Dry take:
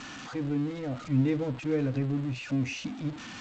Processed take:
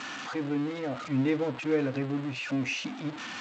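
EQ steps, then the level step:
high-pass filter 580 Hz 6 dB per octave
high-shelf EQ 5,000 Hz −8.5 dB
+7.0 dB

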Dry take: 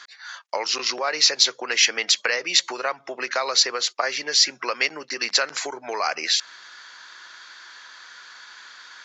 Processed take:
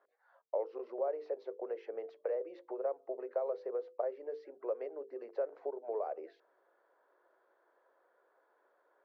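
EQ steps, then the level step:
flat-topped band-pass 490 Hz, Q 1.9
high-frequency loss of the air 94 metres
mains-hum notches 50/100/150/200/250/300/350/400/450/500 Hz
−3.0 dB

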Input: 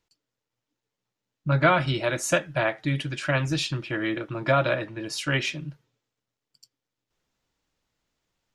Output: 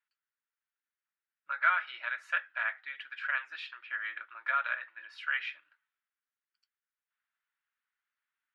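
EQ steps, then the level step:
four-pole ladder high-pass 1,300 Hz, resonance 50%
high-frequency loss of the air 450 metres
+4.0 dB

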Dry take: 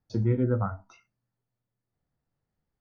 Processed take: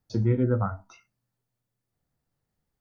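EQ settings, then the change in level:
high-shelf EQ 4,100 Hz +5 dB
+1.5 dB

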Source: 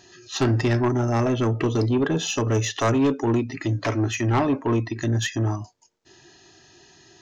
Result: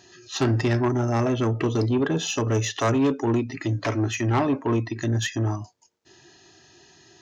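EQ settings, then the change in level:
high-pass filter 49 Hz
−1.0 dB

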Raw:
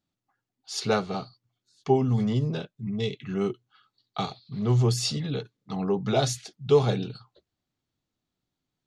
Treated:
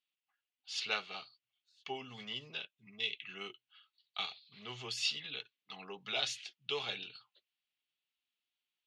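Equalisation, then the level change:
resonant band-pass 2,800 Hz, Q 3.4
+5.5 dB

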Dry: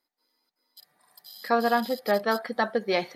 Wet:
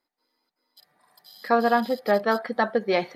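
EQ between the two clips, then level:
high-shelf EQ 4,400 Hz −10 dB
+3.0 dB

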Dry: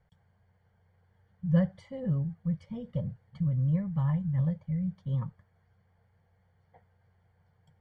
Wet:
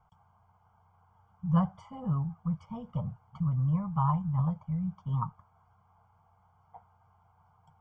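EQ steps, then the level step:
flat-topped bell 810 Hz +15.5 dB
phaser with its sweep stopped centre 2,700 Hz, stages 8
0.0 dB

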